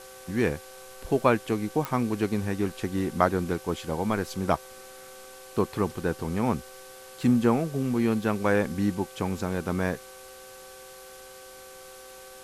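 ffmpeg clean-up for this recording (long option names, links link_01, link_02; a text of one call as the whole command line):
ffmpeg -i in.wav -af "adeclick=threshold=4,bandreject=frequency=383.1:width_type=h:width=4,bandreject=frequency=766.2:width_type=h:width=4,bandreject=frequency=1149.3:width_type=h:width=4,bandreject=frequency=1532.4:width_type=h:width=4,bandreject=frequency=520:width=30,afwtdn=0.004" out.wav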